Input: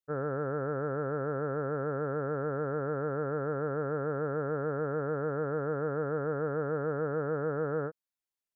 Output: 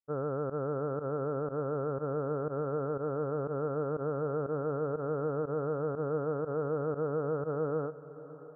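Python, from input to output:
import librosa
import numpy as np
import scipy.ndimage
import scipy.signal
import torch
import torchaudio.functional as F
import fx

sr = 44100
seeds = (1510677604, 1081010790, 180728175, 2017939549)

y = scipy.signal.sosfilt(scipy.signal.ellip(4, 1.0, 60, 1300.0, 'lowpass', fs=sr, output='sos'), x)
y = fx.volume_shaper(y, sr, bpm=121, per_beat=1, depth_db=-19, release_ms=69.0, shape='fast start')
y = fx.echo_diffused(y, sr, ms=614, feedback_pct=52, wet_db=-16.0)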